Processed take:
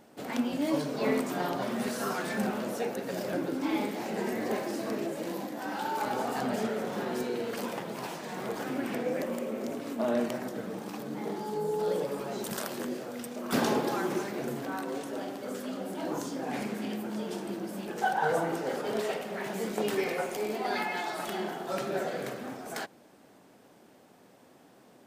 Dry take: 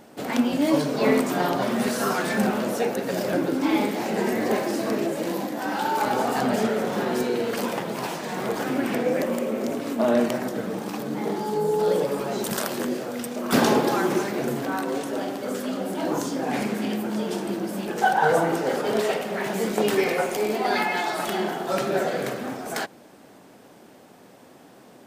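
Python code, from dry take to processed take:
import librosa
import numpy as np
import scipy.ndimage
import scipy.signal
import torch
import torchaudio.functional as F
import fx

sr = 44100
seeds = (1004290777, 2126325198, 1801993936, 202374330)

y = x * librosa.db_to_amplitude(-8.0)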